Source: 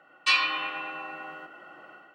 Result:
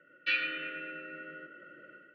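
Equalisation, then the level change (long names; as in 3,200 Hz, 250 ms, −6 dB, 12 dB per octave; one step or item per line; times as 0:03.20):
elliptic band-stop filter 570–1,400 Hz, stop band 40 dB
low-pass filter 2,700 Hz 12 dB per octave
high-frequency loss of the air 240 metres
0.0 dB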